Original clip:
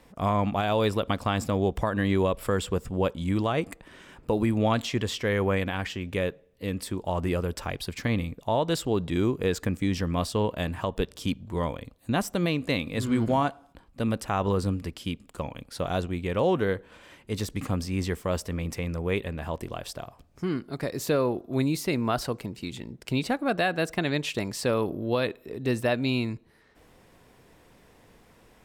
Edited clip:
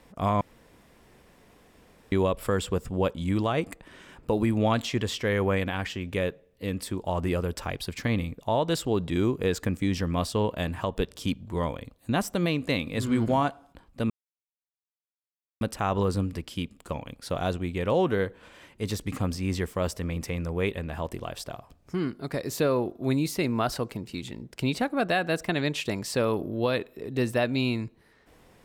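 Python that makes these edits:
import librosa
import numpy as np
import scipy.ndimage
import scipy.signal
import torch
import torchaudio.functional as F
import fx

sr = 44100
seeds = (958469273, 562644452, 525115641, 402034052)

y = fx.edit(x, sr, fx.room_tone_fill(start_s=0.41, length_s=1.71),
    fx.insert_silence(at_s=14.1, length_s=1.51), tone=tone)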